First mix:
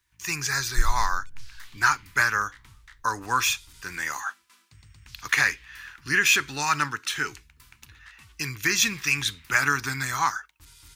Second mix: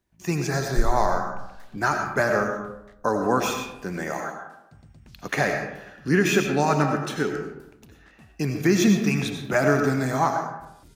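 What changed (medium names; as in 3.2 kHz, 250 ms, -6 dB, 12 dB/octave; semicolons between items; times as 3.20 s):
speech: send on; master: remove FFT filter 110 Hz 0 dB, 190 Hz -15 dB, 300 Hz -9 dB, 670 Hz -16 dB, 970 Hz +4 dB, 2.2 kHz +10 dB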